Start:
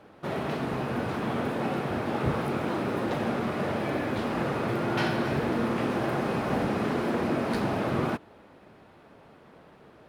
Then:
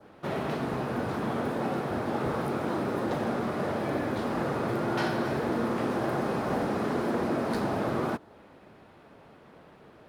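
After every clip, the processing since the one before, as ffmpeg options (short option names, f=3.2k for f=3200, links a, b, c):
-filter_complex "[0:a]adynamicequalizer=threshold=0.00224:dfrequency=2600:dqfactor=1.5:tfrequency=2600:tqfactor=1.5:attack=5:release=100:ratio=0.375:range=3:mode=cutabove:tftype=bell,acrossover=split=250|4200[a][b][c];[a]alimiter=level_in=5.5dB:limit=-24dB:level=0:latency=1:release=178,volume=-5.5dB[d];[d][b][c]amix=inputs=3:normalize=0"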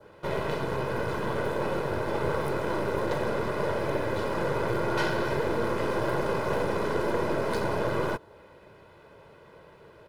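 -af "aeval=exprs='0.158*(cos(1*acos(clip(val(0)/0.158,-1,1)))-cos(1*PI/2))+0.0158*(cos(6*acos(clip(val(0)/0.158,-1,1)))-cos(6*PI/2))':c=same,aecho=1:1:2:0.62"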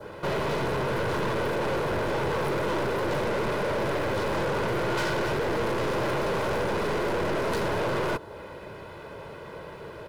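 -filter_complex "[0:a]asplit=2[a][b];[b]alimiter=limit=-22.5dB:level=0:latency=1:release=437,volume=2.5dB[c];[a][c]amix=inputs=2:normalize=0,asoftclip=type=tanh:threshold=-28.5dB,volume=4dB"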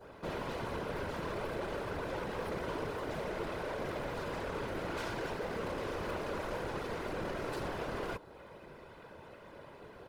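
-af "afftfilt=real='hypot(re,im)*cos(2*PI*random(0))':imag='hypot(re,im)*sin(2*PI*random(1))':win_size=512:overlap=0.75,volume=-5dB"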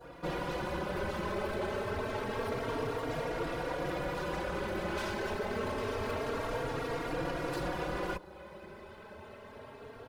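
-filter_complex "[0:a]asplit=2[a][b];[b]adelay=3.7,afreqshift=0.27[c];[a][c]amix=inputs=2:normalize=1,volume=6dB"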